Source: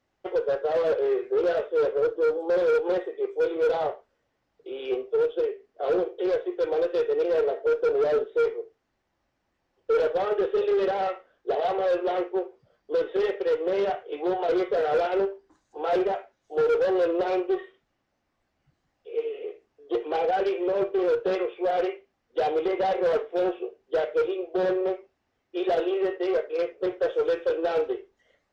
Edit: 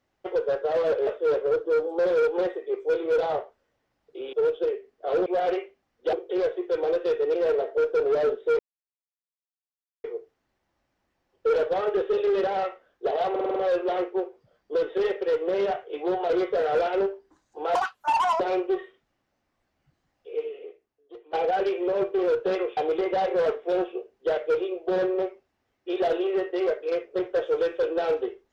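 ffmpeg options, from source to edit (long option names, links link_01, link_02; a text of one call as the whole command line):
ffmpeg -i in.wav -filter_complex "[0:a]asplit=15[link_01][link_02][link_03][link_04][link_05][link_06][link_07][link_08][link_09][link_10][link_11][link_12][link_13][link_14][link_15];[link_01]atrim=end=1.072[link_16];[link_02]atrim=start=1.578:end=4.842[link_17];[link_03]atrim=start=5.088:end=6.022[link_18];[link_04]atrim=start=21.568:end=22.442[link_19];[link_05]atrim=start=6.018:end=8.48,asetpts=PTS-STARTPTS,afade=type=out:start_time=2.458:duration=0.004:curve=hsin,apad=pad_dur=1.45[link_20];[link_06]atrim=start=8.48:end=11.802,asetpts=PTS-STARTPTS,afade=type=in:duration=0.004:curve=hsin[link_21];[link_07]atrim=start=11.748:end=11.802[link_22];[link_08]atrim=start=11.748:end=11.802[link_23];[link_09]atrim=start=11.748:end=11.802[link_24];[link_10]atrim=start=11.748:end=11.802[link_25];[link_11]atrim=start=11.748:end=15.944[link_26];[link_12]atrim=start=15.94:end=17.2,asetpts=PTS-STARTPTS,asetrate=85554,aresample=44100,atrim=end_sample=28642,asetpts=PTS-STARTPTS[link_27];[link_13]atrim=start=17.196:end=20.13,asetpts=PTS-STARTPTS,afade=type=out:start_time=1.914:duration=1.02:curve=qua:silence=0.1[link_28];[link_14]atrim=start=20.13:end=21.572,asetpts=PTS-STARTPTS,afade=type=in:duration=0.004:curve=hsin:silence=0.1[link_29];[link_15]atrim=start=22.438[link_30];[link_16][link_17]acrossfade=duration=0.004:curve1=hsin:curve2=hsin[link_31];[link_31][link_18]acrossfade=duration=0.004:curve1=hsin:curve2=hsin[link_32];[link_32][link_19]acrossfade=duration=0.004:curve1=hsin:curve2=hsin[link_33];[link_20][link_21]concat=n=2:v=0:a=1[link_34];[link_33][link_34]acrossfade=duration=0.004:curve1=hsin:curve2=hsin[link_35];[link_35][link_22]acrossfade=duration=0.004:curve1=hsin:curve2=hsin[link_36];[link_36][link_23]acrossfade=duration=0.004:curve1=hsin:curve2=hsin[link_37];[link_37][link_24]acrossfade=duration=0.004:curve1=hsin:curve2=hsin[link_38];[link_38][link_25]acrossfade=duration=0.004:curve1=hsin:curve2=hsin[link_39];[link_39][link_26]acrossfade=duration=0.004:curve1=hsin:curve2=hsin[link_40];[link_40][link_27]acrossfade=duration=0.004:curve1=hsin:curve2=hsin[link_41];[link_28][link_29]concat=n=2:v=0:a=1[link_42];[link_41][link_42]acrossfade=duration=0.004:curve1=hsin:curve2=hsin[link_43];[link_43][link_30]acrossfade=duration=0.004:curve1=hsin:curve2=hsin" out.wav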